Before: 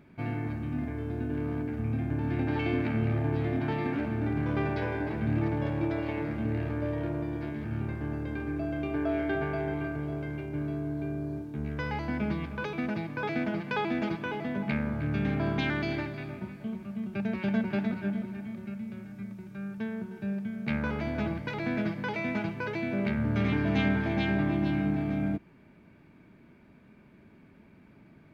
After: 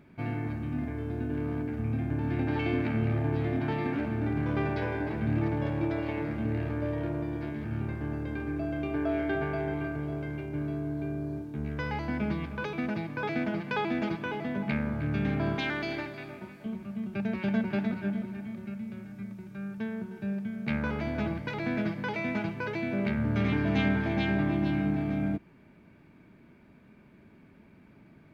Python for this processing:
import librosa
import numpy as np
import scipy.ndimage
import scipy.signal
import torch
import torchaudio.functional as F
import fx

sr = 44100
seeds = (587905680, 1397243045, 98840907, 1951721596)

y = fx.bass_treble(x, sr, bass_db=-9, treble_db=2, at=(15.55, 16.66))